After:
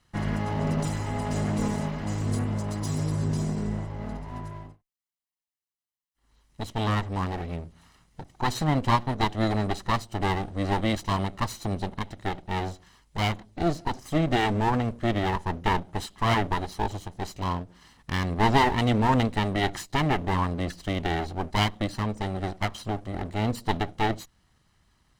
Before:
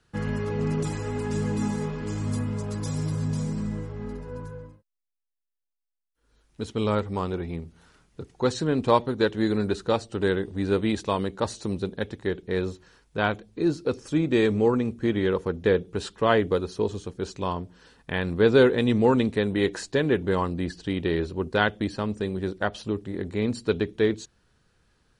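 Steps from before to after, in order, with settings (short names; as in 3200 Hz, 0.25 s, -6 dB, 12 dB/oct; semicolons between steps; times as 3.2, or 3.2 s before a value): minimum comb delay 1 ms; ending taper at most 290 dB/s; gain +1.5 dB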